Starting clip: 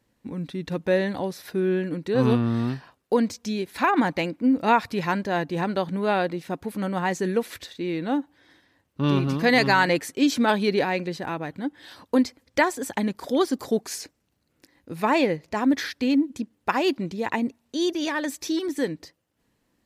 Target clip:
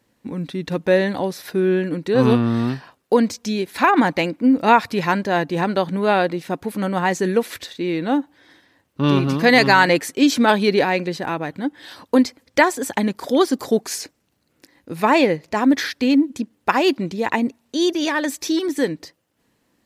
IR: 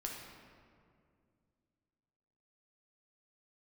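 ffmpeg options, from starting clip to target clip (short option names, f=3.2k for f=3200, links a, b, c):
-af "lowshelf=f=78:g=-10,volume=6dB"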